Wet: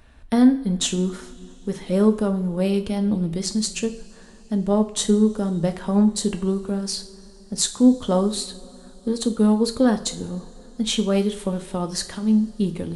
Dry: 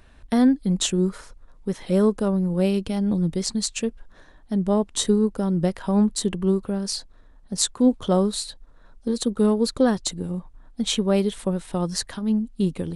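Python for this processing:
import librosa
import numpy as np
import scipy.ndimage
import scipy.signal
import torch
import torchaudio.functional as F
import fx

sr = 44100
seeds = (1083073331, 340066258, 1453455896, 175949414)

y = fx.rev_double_slope(x, sr, seeds[0], early_s=0.46, late_s=4.6, knee_db=-22, drr_db=7.0)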